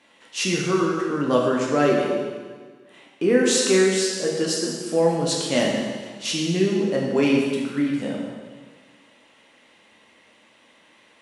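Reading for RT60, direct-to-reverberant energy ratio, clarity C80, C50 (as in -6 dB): 1.6 s, -3.0 dB, 3.0 dB, 1.5 dB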